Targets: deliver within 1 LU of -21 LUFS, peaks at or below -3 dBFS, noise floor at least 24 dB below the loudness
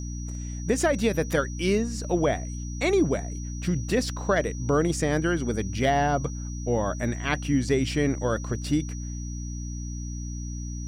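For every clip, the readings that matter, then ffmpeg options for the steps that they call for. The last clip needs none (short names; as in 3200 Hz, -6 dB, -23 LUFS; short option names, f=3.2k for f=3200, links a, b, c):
hum 60 Hz; harmonics up to 300 Hz; hum level -31 dBFS; steady tone 5800 Hz; tone level -43 dBFS; loudness -27.0 LUFS; peak -10.5 dBFS; loudness target -21.0 LUFS
-> -af "bandreject=f=60:t=h:w=6,bandreject=f=120:t=h:w=6,bandreject=f=180:t=h:w=6,bandreject=f=240:t=h:w=6,bandreject=f=300:t=h:w=6"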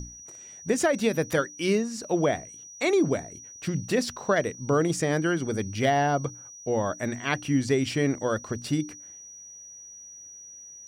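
hum none; steady tone 5800 Hz; tone level -43 dBFS
-> -af "bandreject=f=5.8k:w=30"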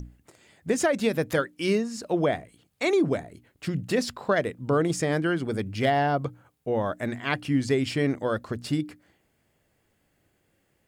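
steady tone none; loudness -27.0 LUFS; peak -11.5 dBFS; loudness target -21.0 LUFS
-> -af "volume=6dB"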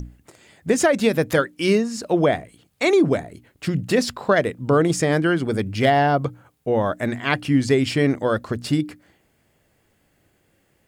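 loudness -21.0 LUFS; peak -5.5 dBFS; noise floor -65 dBFS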